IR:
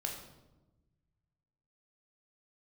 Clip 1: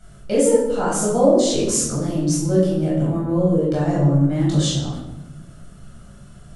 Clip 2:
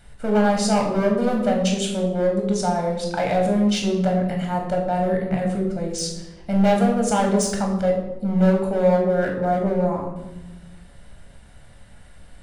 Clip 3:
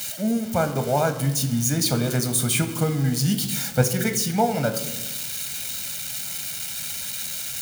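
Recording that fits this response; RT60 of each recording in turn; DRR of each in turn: 2; 1.1 s, 1.1 s, 1.2 s; -7.0 dB, 0.5 dB, 8.0 dB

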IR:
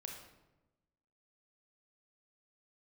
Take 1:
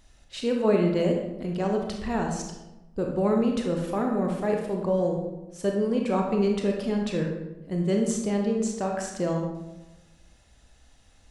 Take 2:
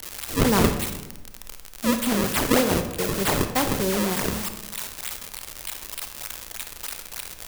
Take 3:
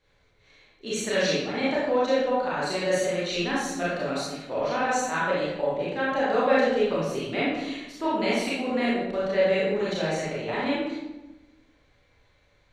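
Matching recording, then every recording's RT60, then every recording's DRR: 1; 1.0 s, 1.0 s, 1.0 s; 1.0 dB, 6.5 dB, -8.0 dB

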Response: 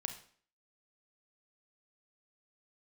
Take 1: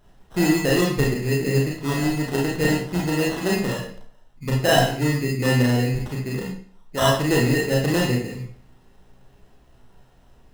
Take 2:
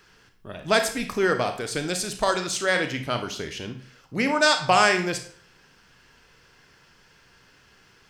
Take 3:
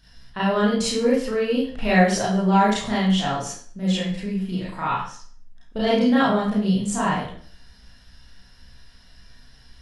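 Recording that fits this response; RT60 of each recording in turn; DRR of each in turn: 2; 0.50 s, 0.50 s, 0.50 s; -3.5 dB, 5.5 dB, -8.5 dB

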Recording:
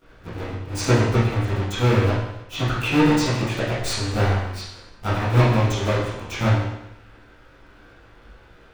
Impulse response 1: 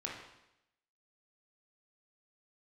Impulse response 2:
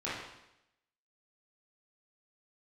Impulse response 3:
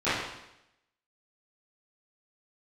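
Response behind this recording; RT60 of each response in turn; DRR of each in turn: 3; 0.85 s, 0.85 s, 0.85 s; -3.0 dB, -10.5 dB, -18.5 dB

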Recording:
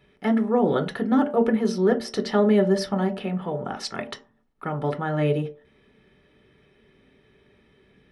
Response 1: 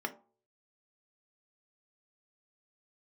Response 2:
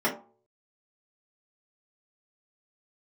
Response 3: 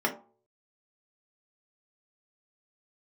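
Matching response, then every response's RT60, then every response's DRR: 1; 0.45 s, 0.45 s, 0.45 s; 5.0 dB, -8.0 dB, -1.5 dB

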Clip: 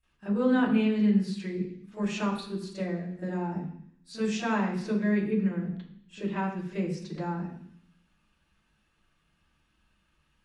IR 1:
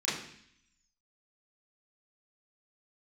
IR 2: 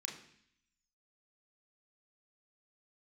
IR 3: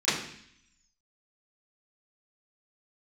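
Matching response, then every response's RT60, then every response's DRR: 3; 0.65 s, 0.65 s, 0.65 s; -9.5 dB, 0.0 dB, -16.0 dB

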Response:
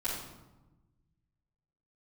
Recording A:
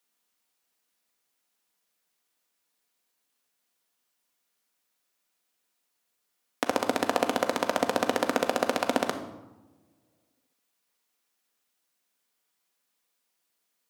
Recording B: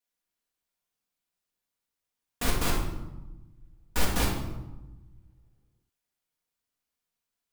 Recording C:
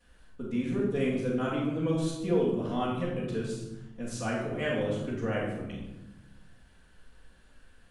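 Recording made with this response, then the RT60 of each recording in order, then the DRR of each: C; 1.1 s, 1.1 s, 1.1 s; 5.5 dB, -3.5 dB, -11.0 dB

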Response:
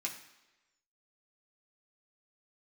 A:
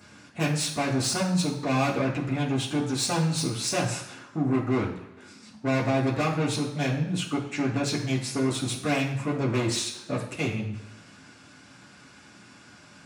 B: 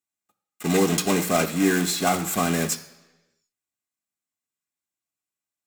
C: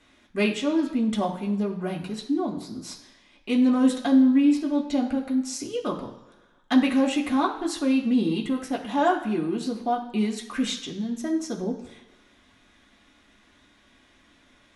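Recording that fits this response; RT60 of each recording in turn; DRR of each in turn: C; 1.1 s, no single decay rate, 1.1 s; -8.0 dB, 5.0 dB, -1.5 dB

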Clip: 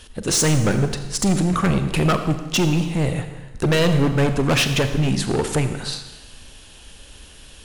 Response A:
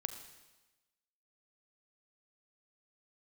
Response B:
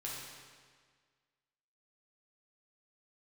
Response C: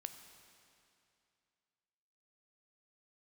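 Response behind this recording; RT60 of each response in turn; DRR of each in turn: A; 1.1 s, 1.7 s, 2.6 s; 8.0 dB, -5.5 dB, 7.5 dB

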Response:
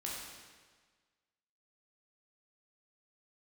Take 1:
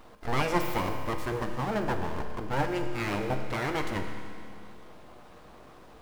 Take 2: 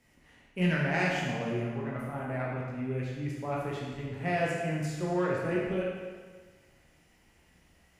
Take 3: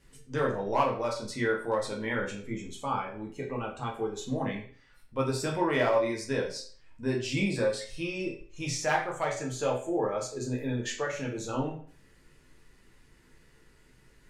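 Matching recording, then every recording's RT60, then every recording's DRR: 2; 2.3 s, 1.5 s, 0.45 s; 4.5 dB, -4.5 dB, -2.5 dB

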